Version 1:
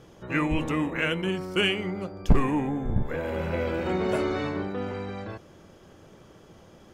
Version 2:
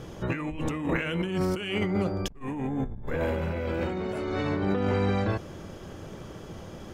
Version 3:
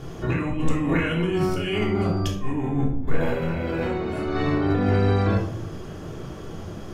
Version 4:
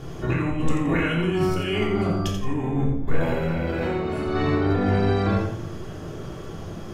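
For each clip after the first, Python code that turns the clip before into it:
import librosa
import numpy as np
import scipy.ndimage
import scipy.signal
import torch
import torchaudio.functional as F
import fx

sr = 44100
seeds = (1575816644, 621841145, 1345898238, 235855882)

y1 = fx.low_shelf(x, sr, hz=160.0, db=5.5)
y1 = fx.over_compress(y1, sr, threshold_db=-32.0, ratio=-1.0)
y1 = y1 * 10.0 ** (1.5 / 20.0)
y2 = fx.room_shoebox(y1, sr, seeds[0], volume_m3=950.0, walls='furnished', distance_m=3.3)
y3 = fx.echo_feedback(y2, sr, ms=86, feedback_pct=29, wet_db=-7.5)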